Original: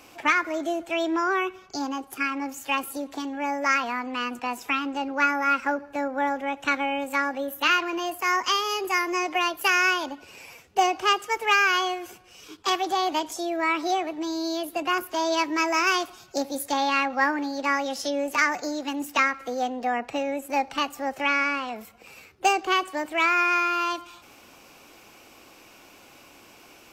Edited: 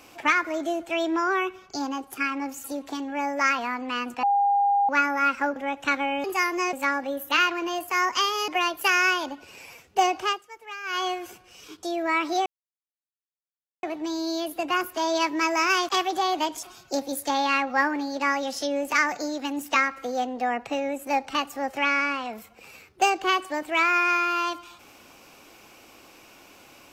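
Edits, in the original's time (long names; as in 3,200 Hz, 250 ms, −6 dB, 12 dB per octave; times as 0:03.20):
0:02.64–0:02.89: remove
0:04.48–0:05.14: beep over 806 Hz −18 dBFS
0:05.81–0:06.36: remove
0:08.79–0:09.28: move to 0:07.04
0:10.98–0:11.88: duck −17.5 dB, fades 0.25 s
0:12.63–0:13.37: move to 0:16.06
0:14.00: splice in silence 1.37 s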